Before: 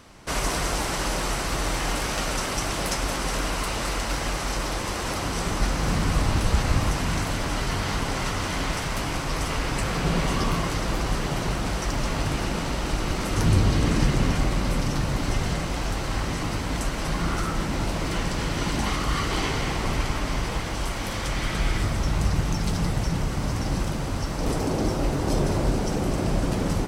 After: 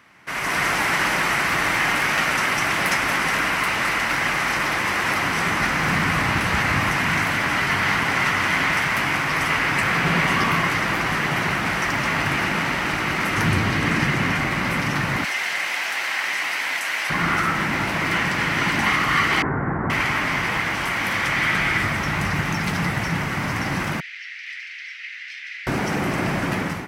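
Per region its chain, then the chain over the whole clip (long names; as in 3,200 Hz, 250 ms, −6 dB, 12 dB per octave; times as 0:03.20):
0:15.24–0:17.10: high-pass filter 870 Hz + parametric band 1,200 Hz −7.5 dB 0.92 octaves + envelope flattener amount 70%
0:19.42–0:19.90: elliptic low-pass filter 1,600 Hz, stop band 80 dB + tilt shelving filter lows +6 dB, about 630 Hz
0:24.00–0:25.67: Butterworth high-pass 1,900 Hz 48 dB per octave + high-frequency loss of the air 220 metres
whole clip: high-pass filter 160 Hz 12 dB per octave; automatic gain control gain up to 10 dB; octave-band graphic EQ 250/500/2,000/4,000/8,000 Hz −3/−7/+10/−5/−8 dB; level −3 dB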